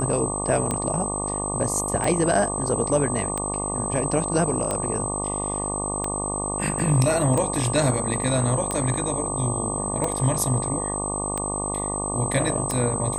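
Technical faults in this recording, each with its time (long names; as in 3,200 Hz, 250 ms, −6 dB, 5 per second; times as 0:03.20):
mains buzz 50 Hz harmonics 24 −30 dBFS
scratch tick 45 rpm −12 dBFS
whistle 8,200 Hz −28 dBFS
0:06.79: drop-out 3.6 ms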